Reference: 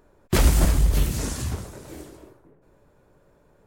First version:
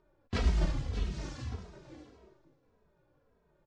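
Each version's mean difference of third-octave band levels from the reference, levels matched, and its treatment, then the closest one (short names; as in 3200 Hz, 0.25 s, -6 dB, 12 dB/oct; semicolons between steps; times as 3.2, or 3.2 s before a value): 5.5 dB: LPF 5400 Hz 24 dB/oct; thinning echo 0.107 s, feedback 72%, level -18.5 dB; endless flanger 2.8 ms -1.7 Hz; gain -8.5 dB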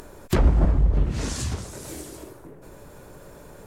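7.5 dB: treble ducked by the level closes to 1000 Hz, closed at -15.5 dBFS; high shelf 4800 Hz +11.5 dB; upward compressor, threshold -31 dBFS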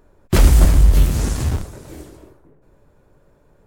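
2.0 dB: low shelf 140 Hz +7 dB; notches 60/120/180 Hz; in parallel at -9 dB: Schmitt trigger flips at -24 dBFS; on the sum: gain +1.5 dB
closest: third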